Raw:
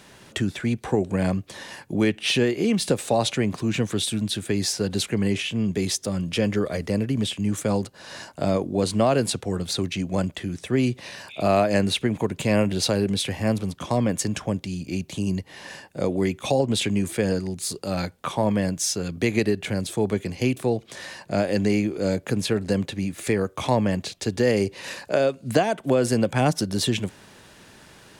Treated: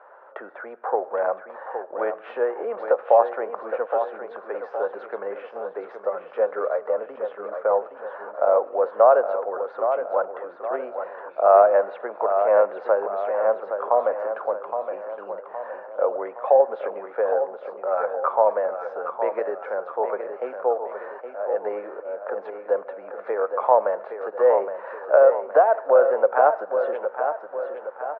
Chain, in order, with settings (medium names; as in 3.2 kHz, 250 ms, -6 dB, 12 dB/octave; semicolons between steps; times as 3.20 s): elliptic band-pass 510–1400 Hz, stop band 80 dB; 21.06–22.66 s: slow attack 357 ms; feedback delay 817 ms, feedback 49%, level -8 dB; reverberation RT60 1.1 s, pre-delay 5 ms, DRR 19 dB; trim +7.5 dB